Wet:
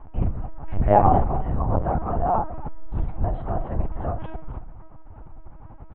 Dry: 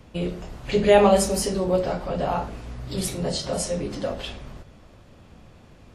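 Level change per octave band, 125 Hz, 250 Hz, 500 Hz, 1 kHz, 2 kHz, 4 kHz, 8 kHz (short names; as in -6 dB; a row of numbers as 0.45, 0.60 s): +5.5 dB, -3.0 dB, -5.5 dB, +4.5 dB, -10.0 dB, under -25 dB, under -40 dB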